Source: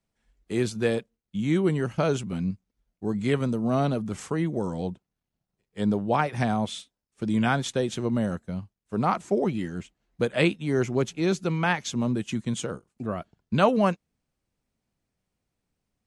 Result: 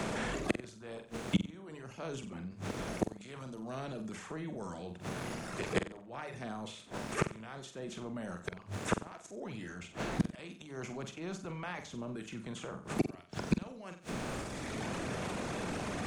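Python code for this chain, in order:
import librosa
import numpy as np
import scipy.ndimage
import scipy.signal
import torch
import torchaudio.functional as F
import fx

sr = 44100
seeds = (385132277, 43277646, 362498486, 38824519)

p1 = fx.bin_compress(x, sr, power=0.6)
p2 = fx.hum_notches(p1, sr, base_hz=50, count=3)
p3 = fx.dereverb_blind(p2, sr, rt60_s=1.3)
p4 = fx.transient(p3, sr, attack_db=-5, sustain_db=8)
p5 = fx.gate_flip(p4, sr, shuts_db=-24.0, range_db=-41)
p6 = p5 + fx.room_flutter(p5, sr, wall_m=7.8, rt60_s=0.34, dry=0)
p7 = fx.band_squash(p6, sr, depth_pct=70)
y = F.gain(torch.from_numpy(p7), 16.0).numpy()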